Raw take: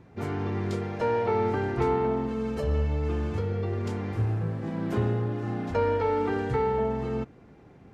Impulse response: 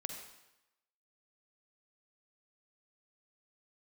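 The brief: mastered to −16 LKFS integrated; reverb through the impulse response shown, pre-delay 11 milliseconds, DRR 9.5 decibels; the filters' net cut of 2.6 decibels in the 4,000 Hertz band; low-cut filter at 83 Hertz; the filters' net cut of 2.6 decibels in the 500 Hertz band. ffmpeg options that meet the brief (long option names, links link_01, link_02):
-filter_complex "[0:a]highpass=83,equalizer=frequency=500:width_type=o:gain=-3,equalizer=frequency=4000:width_type=o:gain=-3.5,asplit=2[link_01][link_02];[1:a]atrim=start_sample=2205,adelay=11[link_03];[link_02][link_03]afir=irnorm=-1:irlink=0,volume=-8.5dB[link_04];[link_01][link_04]amix=inputs=2:normalize=0,volume=13dB"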